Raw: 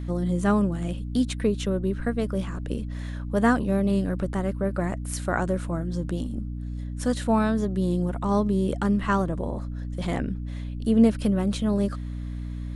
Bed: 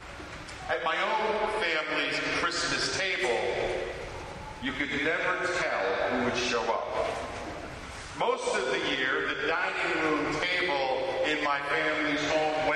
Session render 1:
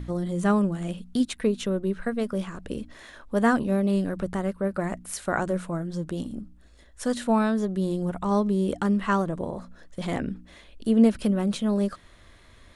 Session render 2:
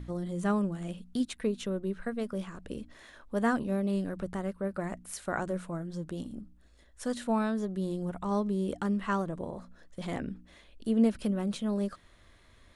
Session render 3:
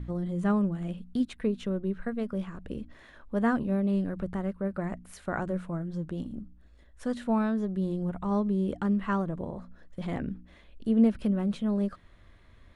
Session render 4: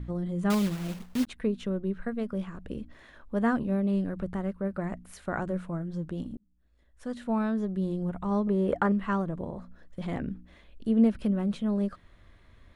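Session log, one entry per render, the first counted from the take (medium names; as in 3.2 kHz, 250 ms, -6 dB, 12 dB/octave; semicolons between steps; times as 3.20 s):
de-hum 60 Hz, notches 5
trim -6.5 dB
tone controls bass +5 dB, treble -10 dB
0.50–1.28 s: block-companded coder 3-bit; 6.37–7.56 s: fade in linear; 8.47–8.92 s: high-order bell 990 Hz +11 dB 2.7 oct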